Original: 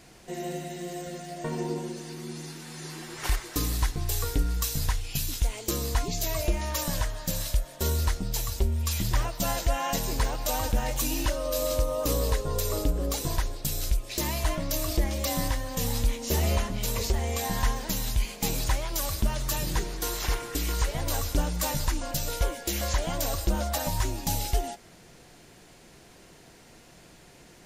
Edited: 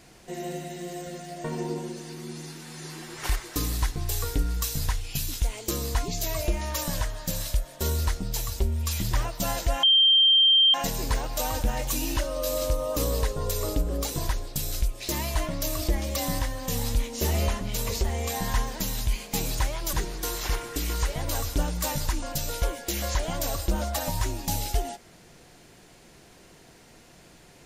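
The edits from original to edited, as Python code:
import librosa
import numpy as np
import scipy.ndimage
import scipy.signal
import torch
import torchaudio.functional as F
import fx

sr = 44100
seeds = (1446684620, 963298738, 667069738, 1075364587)

y = fx.edit(x, sr, fx.insert_tone(at_s=9.83, length_s=0.91, hz=3160.0, db=-15.0),
    fx.cut(start_s=19.02, length_s=0.7), tone=tone)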